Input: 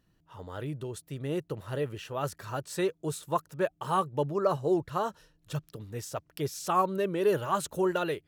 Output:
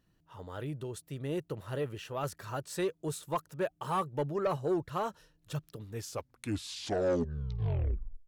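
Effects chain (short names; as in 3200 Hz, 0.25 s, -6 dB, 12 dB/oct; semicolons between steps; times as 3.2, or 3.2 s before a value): tape stop at the end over 2.39 s; soft clip -21 dBFS, distortion -16 dB; gain -2 dB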